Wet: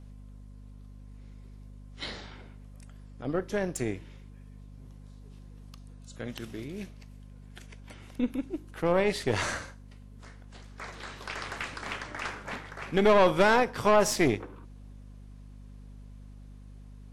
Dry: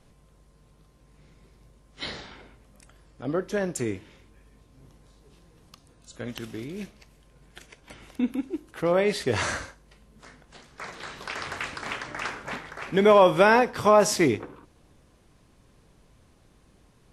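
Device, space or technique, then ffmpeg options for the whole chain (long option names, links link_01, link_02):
valve amplifier with mains hum: -af "aeval=exprs='(tanh(5.62*val(0)+0.65)-tanh(0.65))/5.62':channel_layout=same,aeval=exprs='val(0)+0.00501*(sin(2*PI*50*n/s)+sin(2*PI*2*50*n/s)/2+sin(2*PI*3*50*n/s)/3+sin(2*PI*4*50*n/s)/4+sin(2*PI*5*50*n/s)/5)':channel_layout=same"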